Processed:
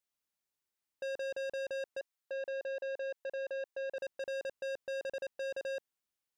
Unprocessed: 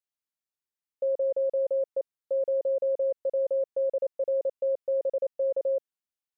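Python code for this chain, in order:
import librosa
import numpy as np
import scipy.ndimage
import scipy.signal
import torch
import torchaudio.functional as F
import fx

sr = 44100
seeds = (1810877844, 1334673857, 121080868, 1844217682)

y = fx.highpass(x, sr, hz=770.0, slope=6, at=(1.99, 3.96), fade=0.02)
y = 10.0 ** (-39.5 / 20.0) * np.tanh(y / 10.0 ** (-39.5 / 20.0))
y = y * librosa.db_to_amplitude(3.0)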